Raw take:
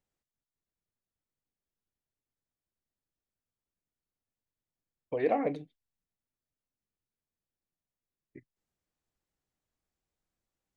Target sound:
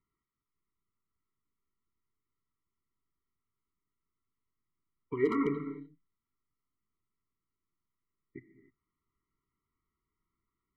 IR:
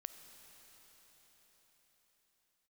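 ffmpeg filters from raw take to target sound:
-filter_complex "[0:a]lowpass=frequency=1600:width_type=q:width=2.6[link_01];[1:a]atrim=start_sample=2205,afade=type=out:start_time=0.36:duration=0.01,atrim=end_sample=16317[link_02];[link_01][link_02]afir=irnorm=-1:irlink=0,asoftclip=type=hard:threshold=-22.5dB,afftfilt=real='re*eq(mod(floor(b*sr/1024/470),2),0)':imag='im*eq(mod(floor(b*sr/1024/470),2),0)':win_size=1024:overlap=0.75,volume=8.5dB"

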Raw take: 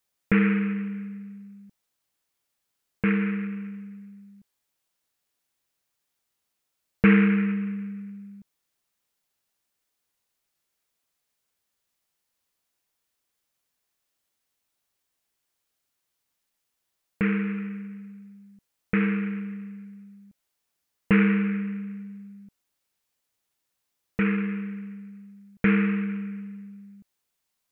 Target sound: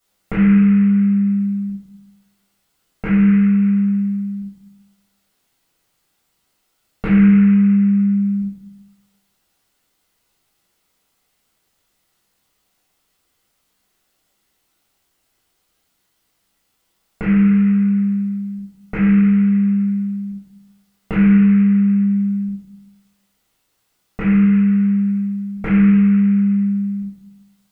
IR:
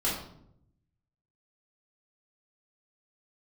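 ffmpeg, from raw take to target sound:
-filter_complex "[0:a]acompressor=threshold=-37dB:ratio=3[link_01];[1:a]atrim=start_sample=2205[link_02];[link_01][link_02]afir=irnorm=-1:irlink=0,volume=5dB"

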